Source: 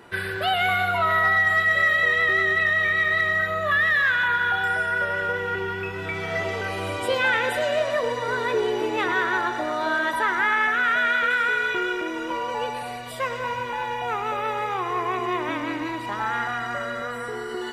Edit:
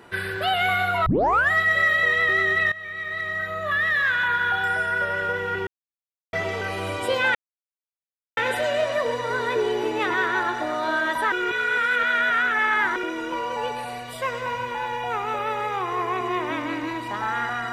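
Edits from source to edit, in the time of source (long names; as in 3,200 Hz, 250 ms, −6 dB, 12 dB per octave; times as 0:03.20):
0:01.06: tape start 0.45 s
0:02.72–0:04.77: fade in equal-power, from −17.5 dB
0:05.67–0:06.33: silence
0:07.35: splice in silence 1.02 s
0:10.30–0:11.94: reverse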